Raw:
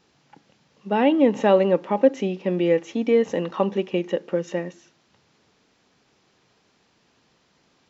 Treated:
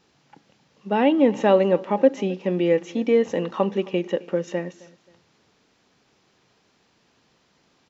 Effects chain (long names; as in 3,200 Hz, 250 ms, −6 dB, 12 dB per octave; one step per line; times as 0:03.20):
repeating echo 265 ms, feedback 34%, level −22 dB